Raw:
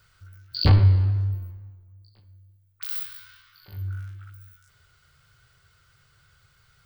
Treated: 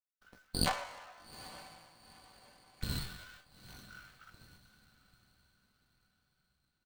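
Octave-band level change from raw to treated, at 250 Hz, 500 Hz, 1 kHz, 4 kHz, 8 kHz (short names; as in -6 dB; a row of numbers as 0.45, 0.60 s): -9.0, -7.5, -2.0, -7.0, +9.0 dB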